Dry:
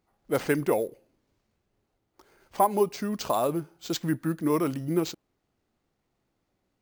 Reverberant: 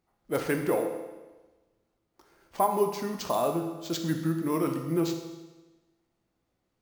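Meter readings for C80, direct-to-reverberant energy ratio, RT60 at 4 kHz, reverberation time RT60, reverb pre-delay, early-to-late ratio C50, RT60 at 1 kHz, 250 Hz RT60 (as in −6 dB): 8.5 dB, 3.5 dB, 1.2 s, 1.2 s, 6 ms, 6.5 dB, 1.2 s, 1.2 s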